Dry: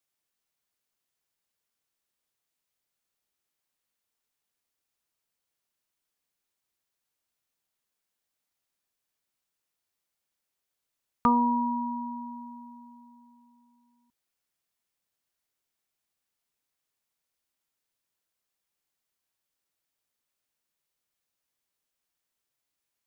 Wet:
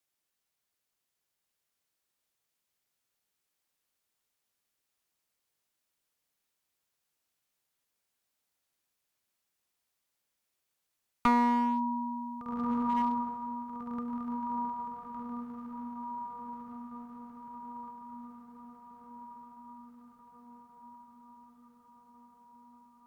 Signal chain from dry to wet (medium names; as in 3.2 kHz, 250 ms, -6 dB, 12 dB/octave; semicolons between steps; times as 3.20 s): echo that smears into a reverb 1573 ms, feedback 61%, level -5 dB; one-sided clip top -25 dBFS